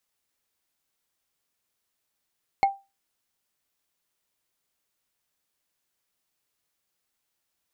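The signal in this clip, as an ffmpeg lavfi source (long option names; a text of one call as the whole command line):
ffmpeg -f lavfi -i "aevalsrc='0.224*pow(10,-3*t/0.25)*sin(2*PI*788*t)+0.0794*pow(10,-3*t/0.074)*sin(2*PI*2172.5*t)+0.0282*pow(10,-3*t/0.033)*sin(2*PI*4258.4*t)+0.01*pow(10,-3*t/0.018)*sin(2*PI*7039.2*t)+0.00355*pow(10,-3*t/0.011)*sin(2*PI*10511.9*t)':duration=0.45:sample_rate=44100" out.wav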